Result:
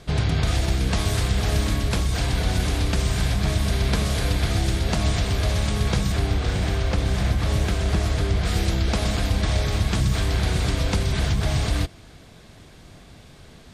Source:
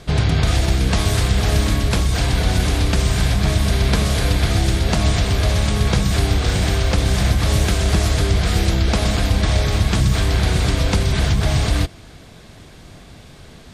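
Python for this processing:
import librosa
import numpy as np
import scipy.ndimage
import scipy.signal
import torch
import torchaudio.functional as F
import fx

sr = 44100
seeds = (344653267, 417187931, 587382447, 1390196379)

y = fx.high_shelf(x, sr, hz=4200.0, db=-7.0, at=(6.12, 8.45))
y = y * librosa.db_to_amplitude(-5.0)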